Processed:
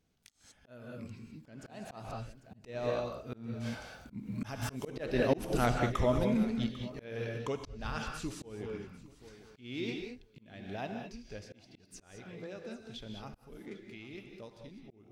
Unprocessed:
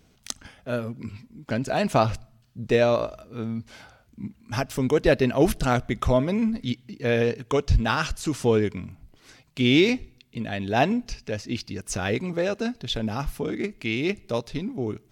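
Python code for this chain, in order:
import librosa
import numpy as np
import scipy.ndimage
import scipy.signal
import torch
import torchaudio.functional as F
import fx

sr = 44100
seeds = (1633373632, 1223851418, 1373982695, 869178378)

p1 = fx.recorder_agc(x, sr, target_db=-14.0, rise_db_per_s=9.2, max_gain_db=30)
p2 = fx.doppler_pass(p1, sr, speed_mps=7, closest_m=7.9, pass_at_s=4.85)
p3 = p2 + fx.echo_feedback(p2, sr, ms=797, feedback_pct=31, wet_db=-20, dry=0)
p4 = fx.rev_gated(p3, sr, seeds[0], gate_ms=230, shape='rising', drr_db=4.0)
p5 = fx.auto_swell(p4, sr, attack_ms=329.0)
y = p5 * librosa.db_to_amplitude(-5.0)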